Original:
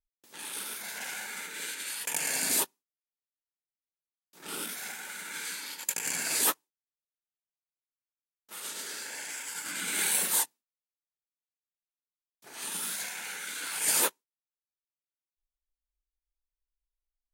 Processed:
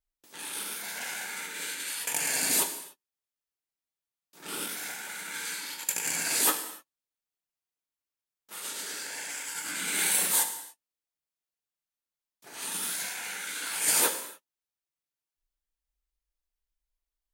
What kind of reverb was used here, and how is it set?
non-linear reverb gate 0.32 s falling, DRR 6 dB; gain +1 dB

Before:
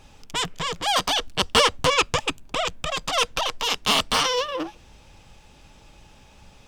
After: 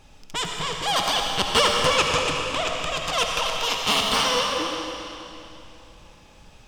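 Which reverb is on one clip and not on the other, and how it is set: digital reverb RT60 2.9 s, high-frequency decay 0.95×, pre-delay 35 ms, DRR 0.5 dB; gain -2 dB

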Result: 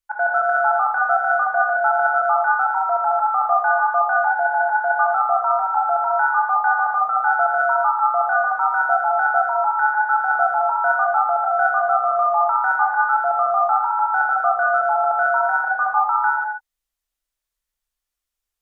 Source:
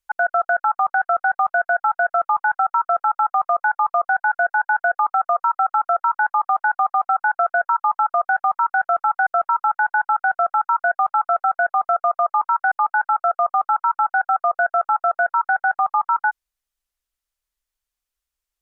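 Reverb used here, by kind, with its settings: non-linear reverb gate 0.3 s flat, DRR -2.5 dB; gain -3.5 dB

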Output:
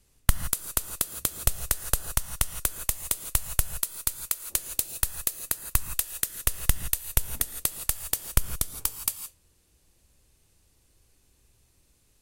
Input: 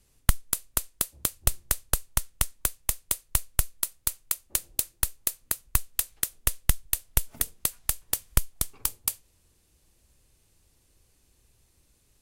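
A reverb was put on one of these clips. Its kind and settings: non-linear reverb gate 0.19 s rising, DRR 8.5 dB

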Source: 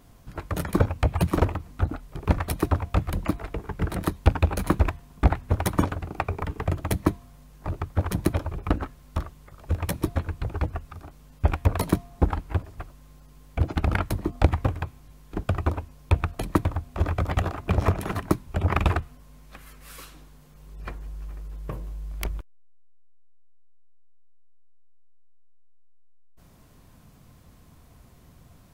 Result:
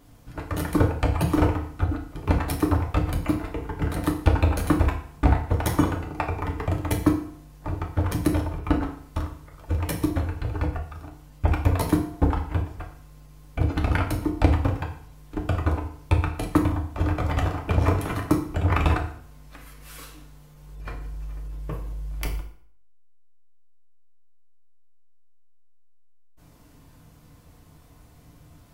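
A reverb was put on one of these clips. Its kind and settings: FDN reverb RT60 0.58 s, low-frequency decay 0.95×, high-frequency decay 0.9×, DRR 0.5 dB; gain -1.5 dB

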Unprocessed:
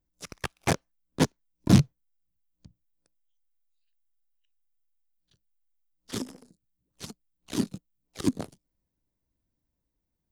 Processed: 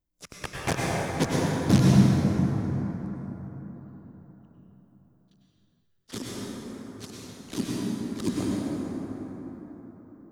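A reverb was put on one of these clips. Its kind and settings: plate-style reverb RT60 4.6 s, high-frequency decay 0.4×, pre-delay 85 ms, DRR -5.5 dB; gain -3 dB

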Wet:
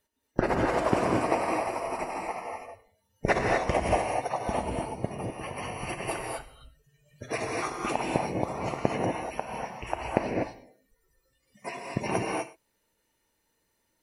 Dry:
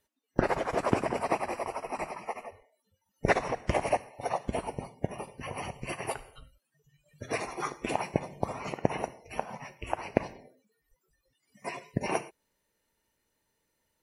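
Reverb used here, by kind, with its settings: non-linear reverb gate 0.27 s rising, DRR -0.5 dB

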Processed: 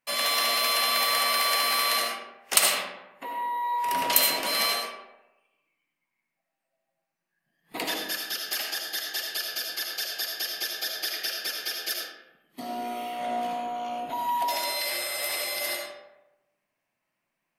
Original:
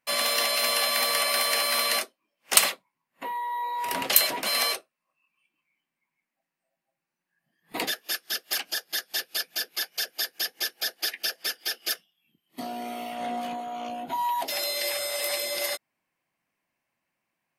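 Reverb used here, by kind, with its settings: digital reverb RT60 1 s, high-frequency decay 0.55×, pre-delay 35 ms, DRR 0 dB; gain -2.5 dB

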